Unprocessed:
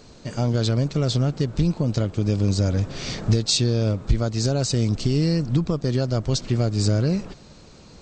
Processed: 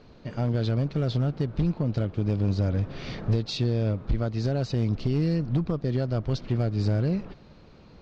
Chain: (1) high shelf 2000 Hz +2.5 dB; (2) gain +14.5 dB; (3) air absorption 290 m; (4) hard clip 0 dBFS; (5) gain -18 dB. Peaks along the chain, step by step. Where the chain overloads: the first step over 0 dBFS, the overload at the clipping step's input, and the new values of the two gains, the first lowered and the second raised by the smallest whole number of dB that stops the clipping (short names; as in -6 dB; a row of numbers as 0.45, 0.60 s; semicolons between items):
-5.5, +9.0, +7.0, 0.0, -18.0 dBFS; step 2, 7.0 dB; step 2 +7.5 dB, step 5 -11 dB